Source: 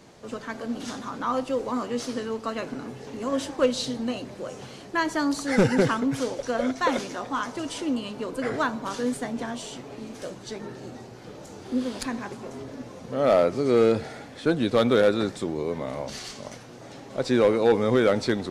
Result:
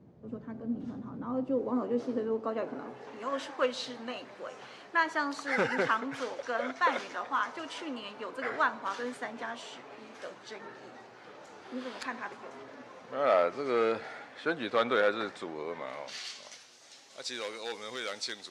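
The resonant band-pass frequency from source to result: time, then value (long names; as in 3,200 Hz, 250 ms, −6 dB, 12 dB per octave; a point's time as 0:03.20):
resonant band-pass, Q 0.85
0:01.21 140 Hz
0:01.81 390 Hz
0:02.35 390 Hz
0:03.27 1,500 Hz
0:15.71 1,500 Hz
0:16.79 5,700 Hz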